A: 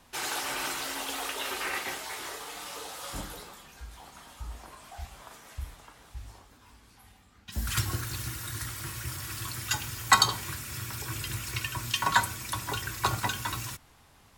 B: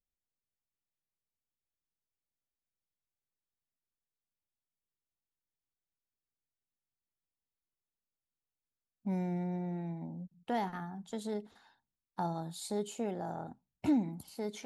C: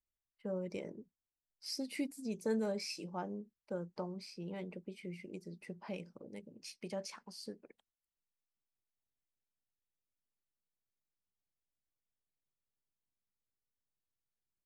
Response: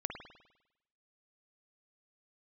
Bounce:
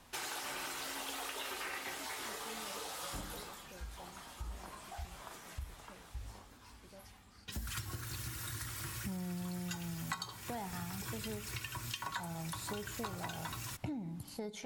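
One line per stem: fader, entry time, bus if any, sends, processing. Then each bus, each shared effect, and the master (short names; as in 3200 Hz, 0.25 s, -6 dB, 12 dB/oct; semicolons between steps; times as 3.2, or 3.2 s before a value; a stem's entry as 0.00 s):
-1.5 dB, 0.00 s, no send, dry
+1.5 dB, 0.00 s, send -13.5 dB, resonant low shelf 170 Hz +9 dB, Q 1.5
-16.5 dB, 0.00 s, no send, dry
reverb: on, RT60 0.90 s, pre-delay 50 ms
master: compressor 6:1, threshold -39 dBFS, peak gain reduction 21.5 dB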